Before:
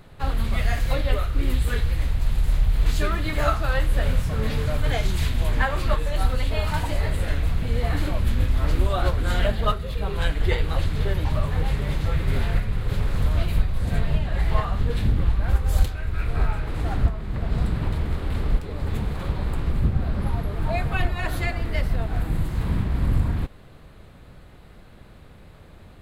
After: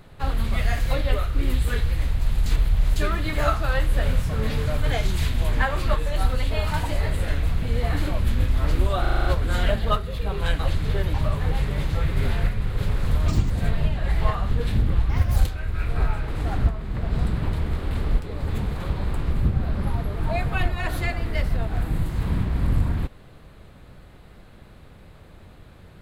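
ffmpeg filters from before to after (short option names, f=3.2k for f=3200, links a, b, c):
-filter_complex "[0:a]asplit=14[a][b][c][d][e][f][g][h][i][j][k][l][m][n];[a]atrim=end=2.462[o];[b]atrim=start=2.458:end=2.962,asetpts=PTS-STARTPTS,areverse[p];[c]atrim=start=2.958:end=9.052[q];[d]atrim=start=9.008:end=9.052[r];[e]atrim=start=9.008:end=9.052[s];[f]atrim=start=9.008:end=9.052[t];[g]atrim=start=9.008:end=9.052[u];[h]atrim=start=9.008:end=9.052[v];[i]atrim=start=9.008:end=10.352[w];[j]atrim=start=10.698:end=13.394[x];[k]atrim=start=13.39:end=13.8,asetpts=PTS-STARTPTS,asetrate=81144,aresample=44100[y];[l]atrim=start=13.796:end=15.394[z];[m]atrim=start=15.39:end=15.76,asetpts=PTS-STARTPTS,asetrate=59535,aresample=44100[aa];[n]atrim=start=15.756[ab];[o][p]acrossfade=d=0.004:c1=hsin:c2=hsin[ac];[ac][q]acrossfade=d=0.004:c1=hsin:c2=hsin[ad];[ad][r]acrossfade=d=0.004:c1=hsin:c2=hsin[ae];[ae][s]acrossfade=d=0.004:c1=hsin:c2=hsin[af];[af][t]acrossfade=d=0.004:c1=hsin:c2=hsin[ag];[ag][u]acrossfade=d=0.004:c1=hsin:c2=hsin[ah];[ah][v]acrossfade=d=0.004:c1=hsin:c2=hsin[ai];[ai][w]acrossfade=d=0.004:c1=hsin:c2=hsin[aj];[aj][x]acrossfade=d=0.004:c1=hsin:c2=hsin[ak];[ak][y]acrossfade=d=0.004:c1=hsin:c2=hsin[al];[al][z]acrossfade=d=0.004:c1=hsin:c2=hsin[am];[am][aa]acrossfade=d=0.004:c1=hsin:c2=hsin[an];[an][ab]acrossfade=d=0.004:c1=hsin:c2=hsin"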